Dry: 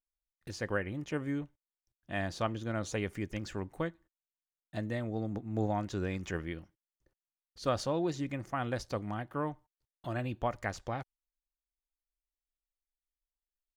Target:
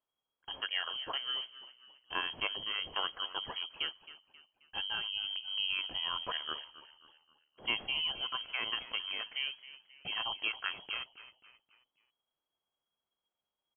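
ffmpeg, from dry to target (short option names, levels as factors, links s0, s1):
-filter_complex "[0:a]asplit=2[s0][s1];[s1]acompressor=threshold=0.00631:ratio=6,volume=1.41[s2];[s0][s2]amix=inputs=2:normalize=0,aexciter=amount=6.8:drive=2:freq=2300,asetrate=40440,aresample=44100,atempo=1.09051,asplit=5[s3][s4][s5][s6][s7];[s4]adelay=267,afreqshift=43,volume=0.158[s8];[s5]adelay=534,afreqshift=86,volume=0.0684[s9];[s6]adelay=801,afreqshift=129,volume=0.0292[s10];[s7]adelay=1068,afreqshift=172,volume=0.0126[s11];[s3][s8][s9][s10][s11]amix=inputs=5:normalize=0,lowpass=f=2800:t=q:w=0.5098,lowpass=f=2800:t=q:w=0.6013,lowpass=f=2800:t=q:w=0.9,lowpass=f=2800:t=q:w=2.563,afreqshift=-3300,volume=0.531"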